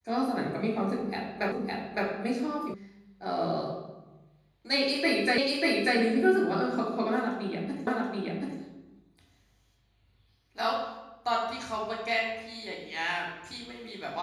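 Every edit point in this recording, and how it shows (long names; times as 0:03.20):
0:01.52: the same again, the last 0.56 s
0:02.74: cut off before it has died away
0:05.38: the same again, the last 0.59 s
0:07.87: the same again, the last 0.73 s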